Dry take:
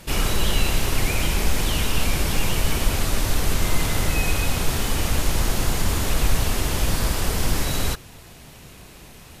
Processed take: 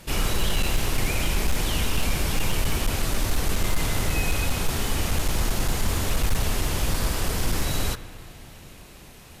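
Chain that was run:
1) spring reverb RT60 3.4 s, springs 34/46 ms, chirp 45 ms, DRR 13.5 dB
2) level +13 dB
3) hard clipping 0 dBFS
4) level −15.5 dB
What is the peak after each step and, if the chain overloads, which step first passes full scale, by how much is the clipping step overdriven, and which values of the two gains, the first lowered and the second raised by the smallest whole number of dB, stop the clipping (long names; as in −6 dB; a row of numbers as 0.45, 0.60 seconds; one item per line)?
−6.5, +6.5, 0.0, −15.5 dBFS
step 2, 6.5 dB
step 2 +6 dB, step 4 −8.5 dB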